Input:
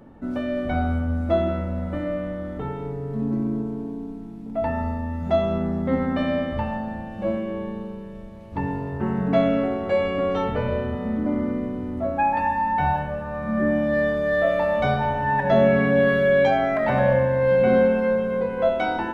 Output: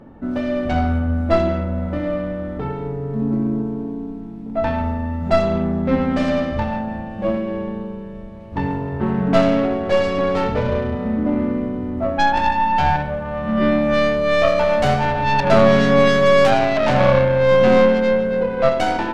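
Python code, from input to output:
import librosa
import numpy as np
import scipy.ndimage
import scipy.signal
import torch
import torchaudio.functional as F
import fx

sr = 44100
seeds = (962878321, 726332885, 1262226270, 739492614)

y = fx.tracing_dist(x, sr, depth_ms=0.32)
y = fx.lowpass(y, sr, hz=3400.0, slope=6)
y = y * librosa.db_to_amplitude(4.5)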